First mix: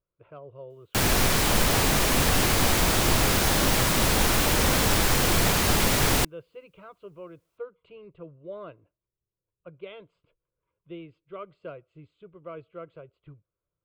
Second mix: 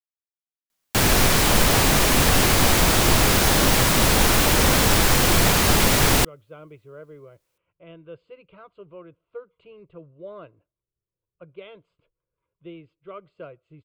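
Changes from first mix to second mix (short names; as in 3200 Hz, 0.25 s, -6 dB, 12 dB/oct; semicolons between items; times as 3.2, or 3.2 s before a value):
speech: entry +1.75 s; background +4.5 dB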